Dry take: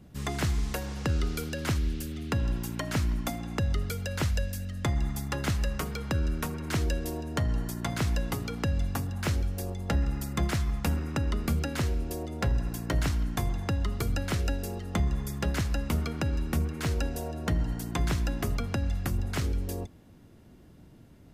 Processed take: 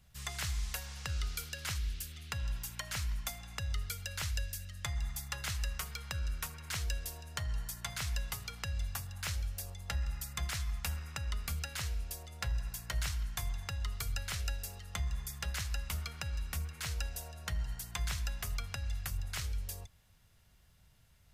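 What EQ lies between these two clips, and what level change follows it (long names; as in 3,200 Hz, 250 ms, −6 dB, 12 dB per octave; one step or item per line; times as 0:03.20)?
guitar amp tone stack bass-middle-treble 10-0-10
0.0 dB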